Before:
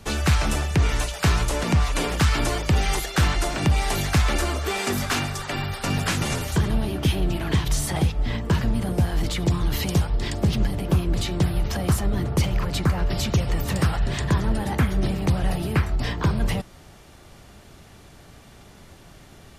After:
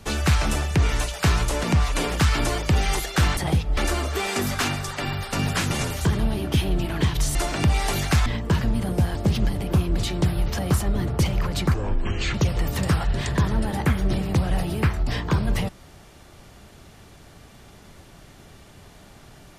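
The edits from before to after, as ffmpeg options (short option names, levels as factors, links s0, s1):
-filter_complex "[0:a]asplit=8[s0][s1][s2][s3][s4][s5][s6][s7];[s0]atrim=end=3.372[s8];[s1]atrim=start=7.858:end=8.262[s9];[s2]atrim=start=4.278:end=7.862[s10];[s3]atrim=start=3.368:end=4.282[s11];[s4]atrim=start=8.258:end=9.152[s12];[s5]atrim=start=10.328:end=12.924[s13];[s6]atrim=start=12.92:end=13.27,asetpts=PTS-STARTPTS,asetrate=25578,aresample=44100,atrim=end_sample=26612,asetpts=PTS-STARTPTS[s14];[s7]atrim=start=13.266[s15];[s8][s9]acrossfade=d=0.004:c1=hsin:c2=hsin[s16];[s16][s10]acrossfade=d=0.004:c1=hsin:c2=hsin[s17];[s17][s11]acrossfade=d=0.004:c1=hsin:c2=hsin[s18];[s18][s12]acrossfade=d=0.004:c1=hsin:c2=hsin[s19];[s19][s13]acrossfade=d=0.004:c1=hsin:c2=hsin[s20];[s20][s14]acrossfade=d=0.004:c1=hsin:c2=hsin[s21];[s21][s15]acrossfade=d=0.004:c1=hsin:c2=hsin"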